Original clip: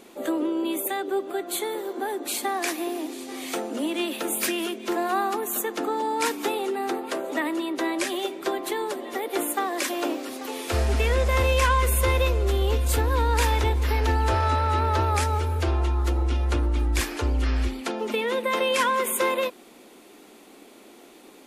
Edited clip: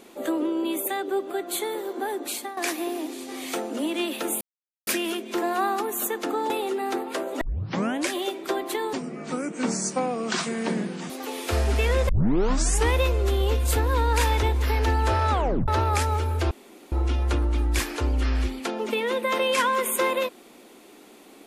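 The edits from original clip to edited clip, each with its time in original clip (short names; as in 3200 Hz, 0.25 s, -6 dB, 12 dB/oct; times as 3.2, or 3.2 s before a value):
2.23–2.57 fade out, to -14 dB
4.41 insert silence 0.46 s
6.04–6.47 cut
7.38 tape start 0.66 s
8.9–10.31 speed 65%
11.3 tape start 0.86 s
14.52 tape stop 0.37 s
15.72–16.13 room tone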